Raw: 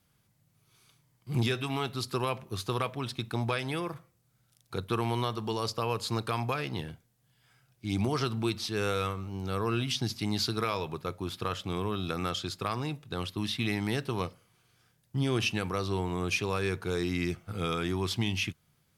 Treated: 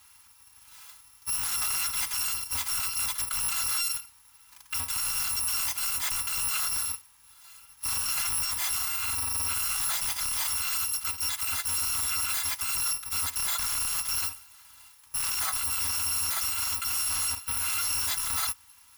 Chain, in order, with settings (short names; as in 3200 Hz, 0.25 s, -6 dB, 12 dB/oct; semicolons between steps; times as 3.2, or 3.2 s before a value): FFT order left unsorted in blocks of 256 samples; notch comb 360 Hz; in parallel at -6 dB: sine folder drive 17 dB, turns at -16 dBFS; on the sum: limiter -23 dBFS, peak gain reduction 8 dB; resonant low shelf 720 Hz -9.5 dB, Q 3